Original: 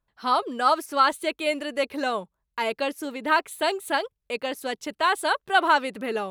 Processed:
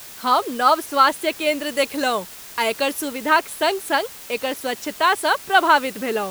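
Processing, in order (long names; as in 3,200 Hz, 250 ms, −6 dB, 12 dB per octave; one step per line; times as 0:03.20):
0:01.66–0:03.09: high-shelf EQ 5,400 Hz +12 dB
in parallel at −3 dB: bit-depth reduction 6 bits, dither triangular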